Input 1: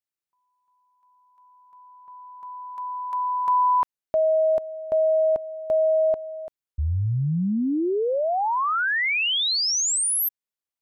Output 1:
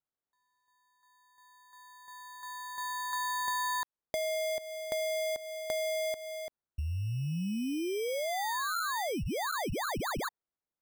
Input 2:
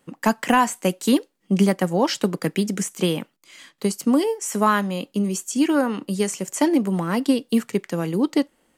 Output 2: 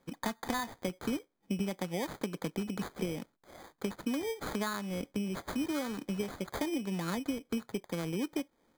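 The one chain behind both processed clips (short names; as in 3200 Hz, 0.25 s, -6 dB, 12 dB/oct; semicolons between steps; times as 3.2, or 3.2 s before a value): high shelf 5400 Hz -5.5 dB; compressor 5:1, threshold -27 dBFS; sample-and-hold 16×; gain -5 dB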